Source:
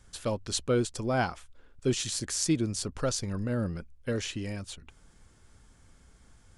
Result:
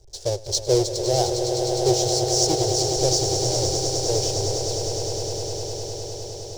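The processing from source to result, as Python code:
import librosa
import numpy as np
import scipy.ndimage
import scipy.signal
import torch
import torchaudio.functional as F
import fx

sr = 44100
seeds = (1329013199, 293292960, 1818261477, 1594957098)

y = fx.halfwave_hold(x, sr)
y = fx.curve_eq(y, sr, hz=(130.0, 240.0, 370.0, 790.0, 1200.0, 2600.0, 5500.0, 12000.0), db=(0, -29, 8, 1, -19, -13, 11, -11))
y = fx.echo_swell(y, sr, ms=102, loudest=8, wet_db=-10)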